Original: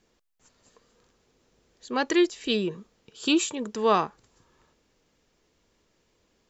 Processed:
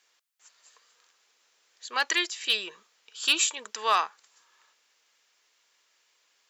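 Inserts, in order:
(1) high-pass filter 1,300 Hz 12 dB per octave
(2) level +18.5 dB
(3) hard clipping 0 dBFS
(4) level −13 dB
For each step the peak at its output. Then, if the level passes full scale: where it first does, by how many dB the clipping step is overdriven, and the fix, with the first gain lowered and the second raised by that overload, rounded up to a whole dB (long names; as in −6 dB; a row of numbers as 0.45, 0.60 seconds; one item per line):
−13.0, +5.5, 0.0, −13.0 dBFS
step 2, 5.5 dB
step 2 +12.5 dB, step 4 −7 dB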